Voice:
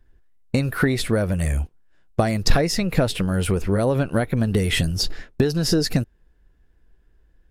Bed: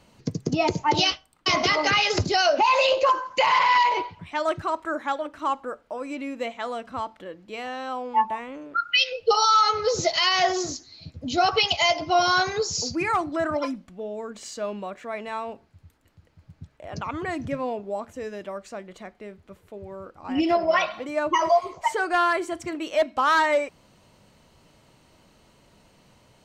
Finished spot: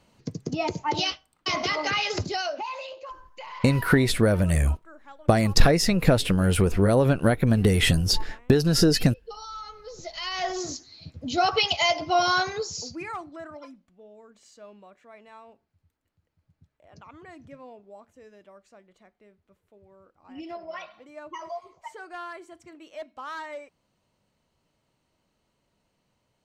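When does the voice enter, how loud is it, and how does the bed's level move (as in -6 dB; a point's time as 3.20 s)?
3.10 s, +0.5 dB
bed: 2.25 s -5 dB
2.96 s -20.5 dB
9.80 s -20.5 dB
10.74 s -1.5 dB
12.32 s -1.5 dB
13.58 s -16.5 dB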